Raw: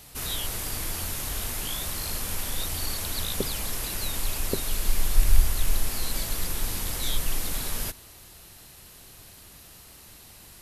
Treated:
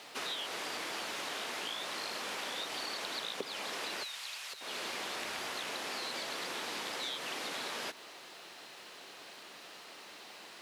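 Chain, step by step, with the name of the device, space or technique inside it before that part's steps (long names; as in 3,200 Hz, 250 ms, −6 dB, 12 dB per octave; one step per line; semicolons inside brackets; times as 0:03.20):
baby monitor (band-pass filter 390–4,000 Hz; downward compressor 6 to 1, threshold −41 dBFS, peak gain reduction 14 dB; white noise bed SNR 29 dB)
high-pass filter 150 Hz 12 dB per octave
0:04.03–0:04.61: guitar amp tone stack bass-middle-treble 10-0-10
level +5 dB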